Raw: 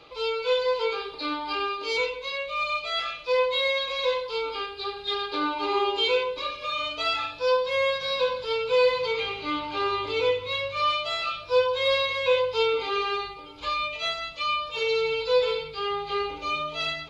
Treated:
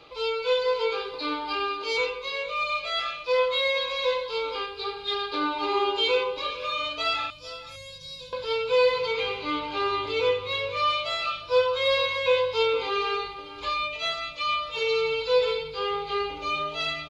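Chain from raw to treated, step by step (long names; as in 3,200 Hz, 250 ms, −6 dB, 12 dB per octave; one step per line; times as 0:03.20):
0:07.30–0:08.33: drawn EQ curve 150 Hz 0 dB, 490 Hz −22 dB, 1,400 Hz −28 dB, 7,500 Hz +3 dB
on a send: single-tap delay 456 ms −15.5 dB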